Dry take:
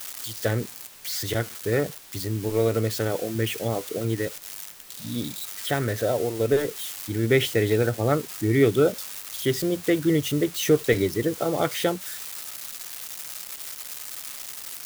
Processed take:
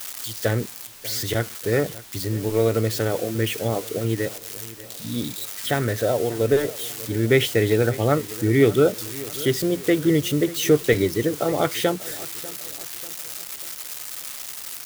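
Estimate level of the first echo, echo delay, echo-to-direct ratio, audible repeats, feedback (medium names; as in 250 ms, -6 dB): -18.5 dB, 592 ms, -17.5 dB, 3, 47%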